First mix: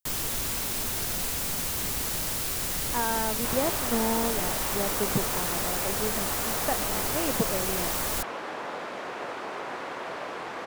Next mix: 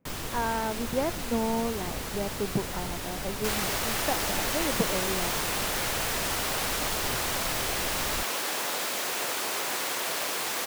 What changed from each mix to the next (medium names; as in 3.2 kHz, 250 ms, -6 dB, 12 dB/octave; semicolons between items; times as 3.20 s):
speech: entry -2.60 s; second sound: remove low-pass 1.4 kHz 12 dB/octave; master: add treble shelf 5.4 kHz -12 dB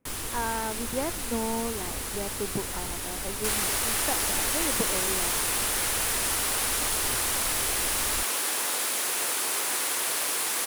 master: add fifteen-band graphic EQ 160 Hz -8 dB, 630 Hz -4 dB, 10 kHz +10 dB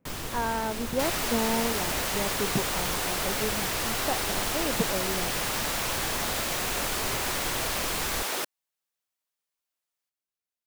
second sound: entry -2.45 s; master: add fifteen-band graphic EQ 160 Hz +8 dB, 630 Hz +4 dB, 10 kHz -10 dB